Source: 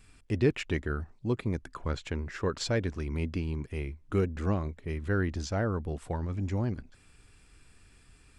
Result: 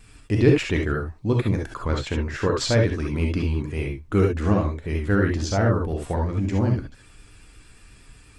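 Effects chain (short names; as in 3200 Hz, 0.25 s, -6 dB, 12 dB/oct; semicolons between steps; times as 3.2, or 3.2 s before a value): non-linear reverb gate 90 ms rising, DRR 1 dB; vibrato 8.5 Hz 41 cents; gain +6.5 dB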